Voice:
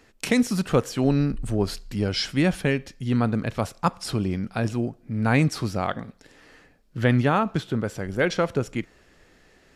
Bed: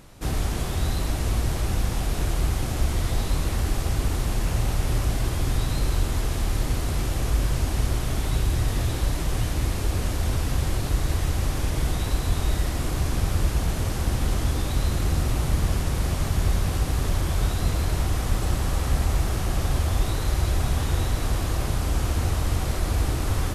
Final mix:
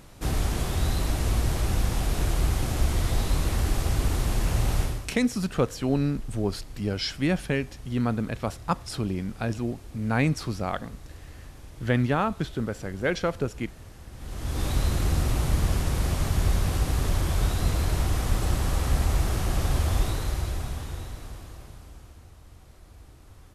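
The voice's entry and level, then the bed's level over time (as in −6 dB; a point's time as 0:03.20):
4.85 s, −3.5 dB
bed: 0:04.82 −0.5 dB
0:05.15 −20 dB
0:14.11 −20 dB
0:14.64 −1 dB
0:19.99 −1 dB
0:22.28 −26 dB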